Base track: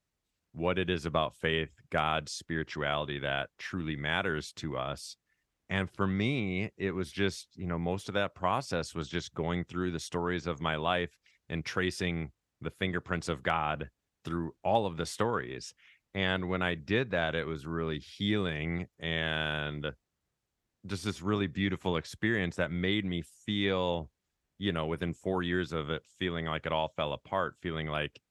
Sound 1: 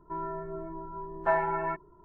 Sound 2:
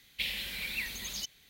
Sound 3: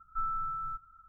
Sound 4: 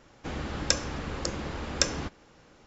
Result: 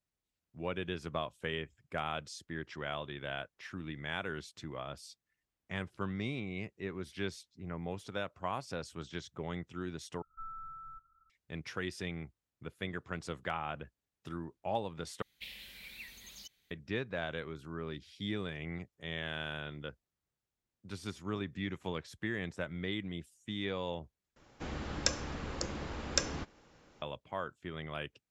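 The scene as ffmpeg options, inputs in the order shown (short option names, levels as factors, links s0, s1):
-filter_complex "[0:a]volume=0.422,asplit=4[s0][s1][s2][s3];[s0]atrim=end=10.224[s4];[3:a]atrim=end=1.08,asetpts=PTS-STARTPTS,volume=0.251[s5];[s1]atrim=start=11.296:end=15.224[s6];[2:a]atrim=end=1.49,asetpts=PTS-STARTPTS,volume=0.224[s7];[s2]atrim=start=16.706:end=24.364[s8];[4:a]atrim=end=2.66,asetpts=PTS-STARTPTS,volume=0.531[s9];[s3]atrim=start=27.016[s10];[s4][s5]acrossfade=d=0.004:c1=hsin:c2=hsin[s11];[s11][s6]acrossfade=d=0.004:c1=hsin:c2=hsin[s12];[s12][s7]acrossfade=d=0.004:c1=hsin:c2=hsin[s13];[s13][s8]acrossfade=d=0.004:c1=hsin:c2=hsin[s14];[s14][s9]acrossfade=d=0.004:c1=hsin:c2=hsin[s15];[s15][s10]acrossfade=d=0.004:c1=hsin:c2=hsin"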